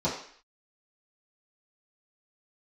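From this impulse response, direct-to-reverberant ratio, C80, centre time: -11.0 dB, 9.0 dB, 34 ms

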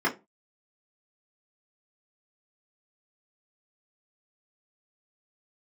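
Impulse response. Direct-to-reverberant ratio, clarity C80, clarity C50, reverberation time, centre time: -6.5 dB, 23.5 dB, 16.5 dB, 0.25 s, 18 ms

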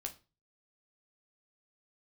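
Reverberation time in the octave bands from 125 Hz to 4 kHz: 0.55, 0.35, 0.30, 0.30, 0.30, 0.30 s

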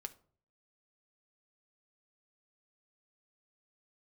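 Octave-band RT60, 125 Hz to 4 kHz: 0.75, 0.55, 0.55, 0.45, 0.30, 0.30 s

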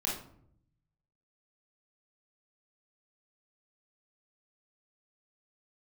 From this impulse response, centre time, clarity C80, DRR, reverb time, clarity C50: 39 ms, 9.0 dB, -4.5 dB, 0.65 s, 3.5 dB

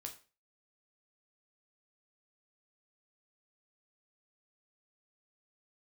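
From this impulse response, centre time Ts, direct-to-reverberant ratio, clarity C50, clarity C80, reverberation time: 13 ms, 2.5 dB, 12.0 dB, 16.5 dB, 0.35 s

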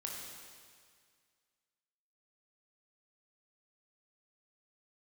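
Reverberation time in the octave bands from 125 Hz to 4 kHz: 2.1, 2.0, 1.9, 2.0, 2.0, 1.9 s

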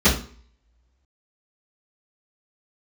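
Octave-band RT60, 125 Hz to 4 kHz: 0.45, 0.50, 0.50, 0.45, 0.40, 0.40 s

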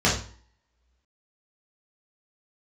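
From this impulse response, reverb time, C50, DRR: 0.45 s, 5.5 dB, -6.5 dB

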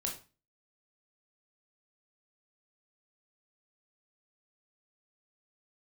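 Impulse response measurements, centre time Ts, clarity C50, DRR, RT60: 22 ms, 8.5 dB, 0.0 dB, 0.35 s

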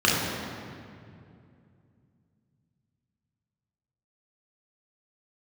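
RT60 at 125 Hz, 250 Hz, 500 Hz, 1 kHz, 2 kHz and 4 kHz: 3.9, 3.4, 2.7, 2.2, 2.0, 1.6 s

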